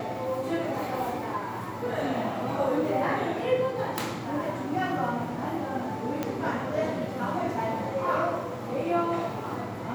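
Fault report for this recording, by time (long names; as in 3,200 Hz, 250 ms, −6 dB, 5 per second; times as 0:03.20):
0:06.23: click −15 dBFS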